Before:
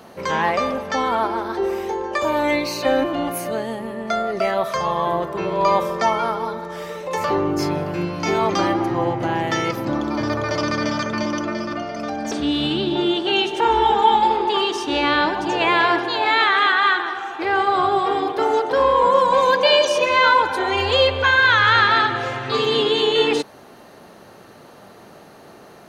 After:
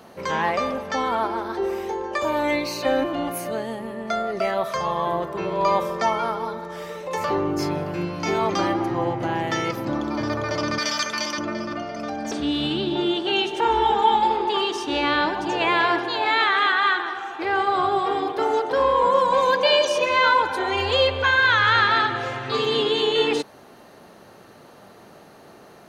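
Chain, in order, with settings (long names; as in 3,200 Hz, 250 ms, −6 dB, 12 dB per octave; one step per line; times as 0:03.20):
0:10.78–0:11.38: spectral tilt +4.5 dB per octave
level −3 dB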